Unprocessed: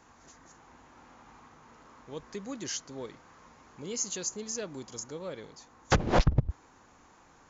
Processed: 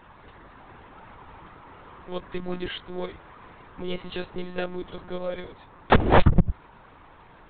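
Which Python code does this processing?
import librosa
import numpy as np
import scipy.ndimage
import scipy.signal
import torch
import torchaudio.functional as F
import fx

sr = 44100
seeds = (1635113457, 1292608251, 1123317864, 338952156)

y = fx.lpc_monotone(x, sr, seeds[0], pitch_hz=180.0, order=16)
y = y * librosa.db_to_amplitude(8.5)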